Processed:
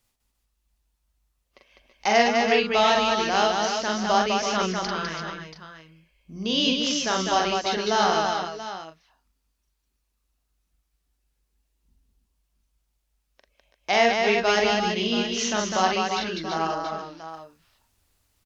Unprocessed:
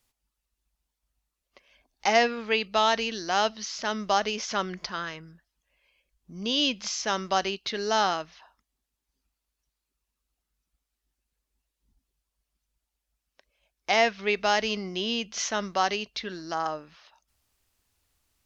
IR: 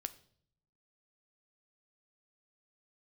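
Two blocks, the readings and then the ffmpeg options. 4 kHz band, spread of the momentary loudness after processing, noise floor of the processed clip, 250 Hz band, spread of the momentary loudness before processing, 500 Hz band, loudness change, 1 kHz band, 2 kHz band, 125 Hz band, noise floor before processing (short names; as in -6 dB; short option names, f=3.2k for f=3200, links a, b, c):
+3.5 dB, 15 LU, -75 dBFS, +6.5 dB, 11 LU, +5.0 dB, +4.0 dB, +4.5 dB, +4.0 dB, +6.5 dB, -84 dBFS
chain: -af "lowshelf=f=500:g=3,aecho=1:1:43|202|329|346|682|713:0.708|0.668|0.376|0.376|0.251|0.119"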